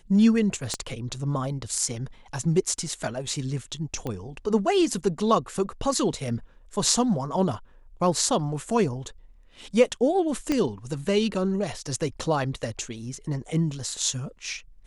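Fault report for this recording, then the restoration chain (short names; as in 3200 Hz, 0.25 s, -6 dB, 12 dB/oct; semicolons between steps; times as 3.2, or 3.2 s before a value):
0.74 pop -13 dBFS
4.07 pop -18 dBFS
10.52 pop -12 dBFS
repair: de-click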